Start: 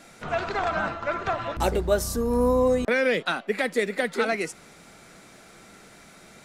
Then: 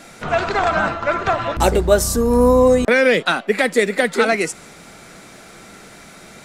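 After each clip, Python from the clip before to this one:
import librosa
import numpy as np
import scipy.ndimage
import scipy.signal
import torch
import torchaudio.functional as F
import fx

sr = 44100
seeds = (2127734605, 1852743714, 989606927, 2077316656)

y = fx.dynamic_eq(x, sr, hz=7800.0, q=2.3, threshold_db=-52.0, ratio=4.0, max_db=4)
y = F.gain(torch.from_numpy(y), 8.5).numpy()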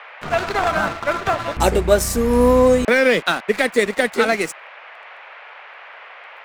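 y = np.sign(x) * np.maximum(np.abs(x) - 10.0 ** (-31.0 / 20.0), 0.0)
y = fx.dmg_noise_band(y, sr, seeds[0], low_hz=540.0, high_hz=2500.0, level_db=-40.0)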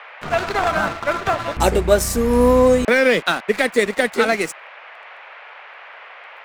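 y = x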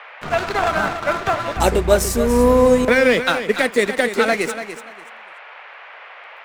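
y = fx.echo_feedback(x, sr, ms=289, feedback_pct=23, wet_db=-10.5)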